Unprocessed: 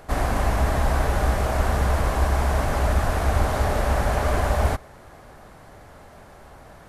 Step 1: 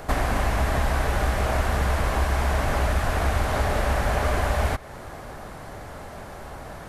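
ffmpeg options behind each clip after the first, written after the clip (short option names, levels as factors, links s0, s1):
-filter_complex "[0:a]acrossover=split=1700|3500[s0][s1][s2];[s0]acompressor=threshold=0.0355:ratio=4[s3];[s1]acompressor=threshold=0.00794:ratio=4[s4];[s2]acompressor=threshold=0.00316:ratio=4[s5];[s3][s4][s5]amix=inputs=3:normalize=0,volume=2.37"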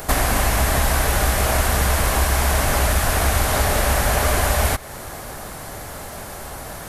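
-af "aemphasis=mode=production:type=75kf,volume=1.5"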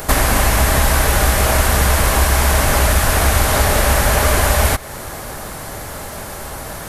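-af "bandreject=f=720:w=19,volume=1.68"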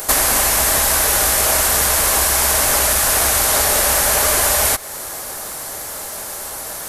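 -af "bass=f=250:g=-11,treble=f=4000:g=9,volume=0.75"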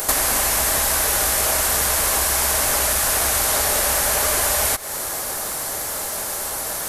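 -af "acompressor=threshold=0.1:ratio=3,volume=1.26"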